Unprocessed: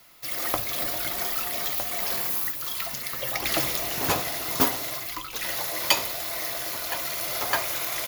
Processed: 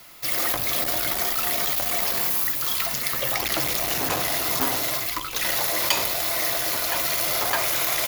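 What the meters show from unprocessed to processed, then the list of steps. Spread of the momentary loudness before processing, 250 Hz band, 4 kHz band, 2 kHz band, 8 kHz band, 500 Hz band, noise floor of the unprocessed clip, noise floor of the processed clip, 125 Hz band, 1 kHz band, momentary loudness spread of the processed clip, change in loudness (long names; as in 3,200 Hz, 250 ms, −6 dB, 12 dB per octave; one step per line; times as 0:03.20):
6 LU, +1.0 dB, +3.5 dB, +3.5 dB, +4.5 dB, +3.0 dB, −36 dBFS, −30 dBFS, +2.5 dB, +3.0 dB, 2 LU, +4.0 dB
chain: in parallel at +0.5 dB: compressor whose output falls as the input rises −30 dBFS
on the sum: noise that follows the level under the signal 14 dB
saturating transformer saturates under 2,900 Hz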